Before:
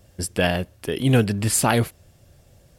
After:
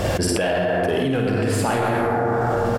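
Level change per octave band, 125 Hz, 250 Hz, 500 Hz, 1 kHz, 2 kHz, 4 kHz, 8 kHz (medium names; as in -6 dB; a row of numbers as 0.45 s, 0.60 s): -1.0 dB, +1.5 dB, +6.0 dB, +6.0 dB, +2.5 dB, -0.5 dB, -5.0 dB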